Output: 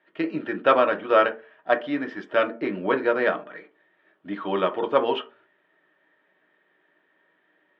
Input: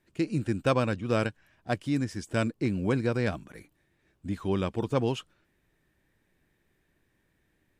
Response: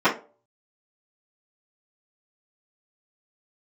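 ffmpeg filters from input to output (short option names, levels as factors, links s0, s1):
-filter_complex "[0:a]highpass=350,equalizer=f=400:t=q:w=4:g=4,equalizer=f=610:t=q:w=4:g=9,equalizer=f=890:t=q:w=4:g=7,equalizer=f=1300:t=q:w=4:g=10,equalizer=f=1800:t=q:w=4:g=9,equalizer=f=3200:t=q:w=4:g=9,lowpass=f=3500:w=0.5412,lowpass=f=3500:w=1.3066,asplit=2[s0][s1];[1:a]atrim=start_sample=2205,lowshelf=f=290:g=9.5[s2];[s1][s2]afir=irnorm=-1:irlink=0,volume=0.0631[s3];[s0][s3]amix=inputs=2:normalize=0"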